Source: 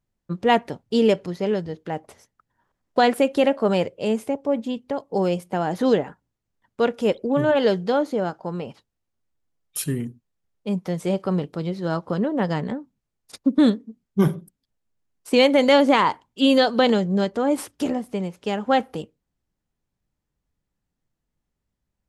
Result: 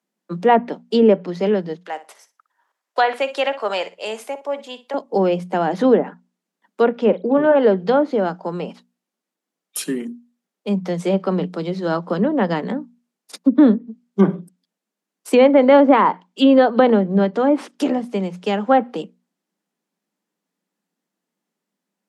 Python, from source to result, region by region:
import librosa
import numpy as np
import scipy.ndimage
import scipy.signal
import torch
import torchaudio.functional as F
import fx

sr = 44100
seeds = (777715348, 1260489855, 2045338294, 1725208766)

y = fx.chain(x, sr, fx.highpass(hz=760.0, slope=12),
    fx.room_flutter(wall_m=10.3, rt60_s=0.24), at=(1.75, 4.94))
y = fx.chain(y, sr, fx.lowpass(hz=4100.0, slope=12),
    fx.doubler(ms=44.0, db=-14.0), at=(6.91, 7.56))
y = scipy.signal.sosfilt(scipy.signal.butter(16, 170.0, 'highpass', fs=sr, output='sos'), y)
y = fx.hum_notches(y, sr, base_hz=60, count=4)
y = fx.env_lowpass_down(y, sr, base_hz=1500.0, full_db=-15.0)
y = F.gain(torch.from_numpy(y), 5.0).numpy()